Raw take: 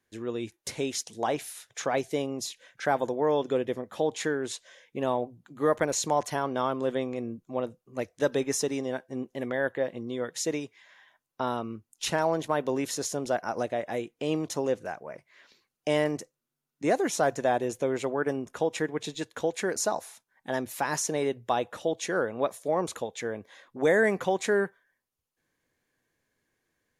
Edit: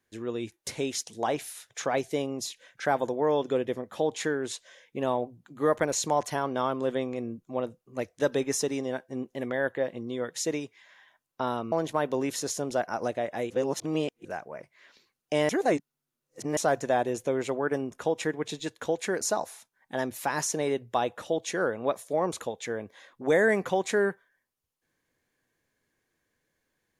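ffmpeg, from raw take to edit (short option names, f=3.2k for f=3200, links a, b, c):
-filter_complex "[0:a]asplit=6[a][b][c][d][e][f];[a]atrim=end=11.722[g];[b]atrim=start=12.268:end=14.052[h];[c]atrim=start=14.048:end=14.802,asetpts=PTS-STARTPTS,areverse[i];[d]atrim=start=14.798:end=16.042[j];[e]atrim=start=16.038:end=17.122,asetpts=PTS-STARTPTS,areverse[k];[f]atrim=start=17.118[l];[g][h]acrossfade=d=0.004:c1=hsin:c2=hsin[m];[m][i]acrossfade=d=0.004:c1=hsin:c2=hsin[n];[n][j]acrossfade=d=0.004:c1=hsin:c2=hsin[o];[o][k]acrossfade=d=0.004:c1=hsin:c2=hsin[p];[p][l]acrossfade=d=0.004:c1=hsin:c2=hsin"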